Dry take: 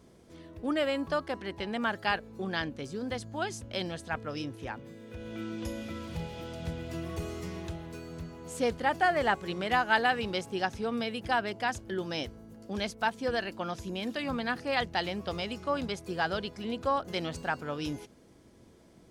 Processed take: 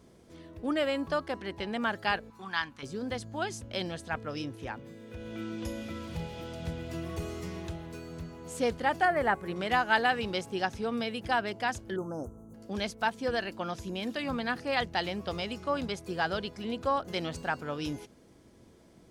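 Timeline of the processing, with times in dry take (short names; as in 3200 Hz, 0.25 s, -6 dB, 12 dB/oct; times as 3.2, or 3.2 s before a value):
2.3–2.83 resonant low shelf 740 Hz -10 dB, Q 3
9.05–9.56 band shelf 4500 Hz -9.5 dB
11.96–12.54 Chebyshev band-stop 1400–6300 Hz, order 5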